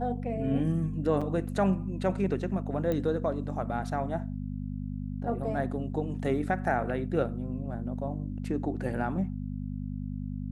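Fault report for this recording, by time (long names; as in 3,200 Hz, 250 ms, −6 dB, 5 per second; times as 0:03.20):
mains hum 50 Hz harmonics 5 −35 dBFS
0:01.21–0:01.22: drop-out 5.4 ms
0:02.92: click −19 dBFS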